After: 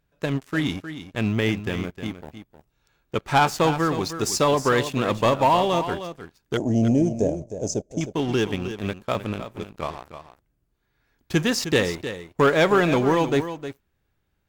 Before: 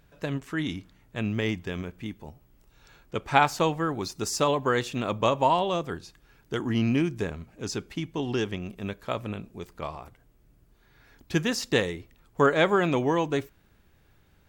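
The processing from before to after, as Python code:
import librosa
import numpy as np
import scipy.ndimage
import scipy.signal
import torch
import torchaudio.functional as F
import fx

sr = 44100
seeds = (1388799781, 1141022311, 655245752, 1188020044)

y = fx.leveller(x, sr, passes=3)
y = fx.curve_eq(y, sr, hz=(400.0, 610.0, 1200.0, 4200.0, 6400.0, 13000.0), db=(0, 13, -22, -16, 6, -19), at=(6.57, 8.01))
y = y + 10.0 ** (-11.0 / 20.0) * np.pad(y, (int(310 * sr / 1000.0), 0))[:len(y)]
y = y * librosa.db_to_amplitude(-6.0)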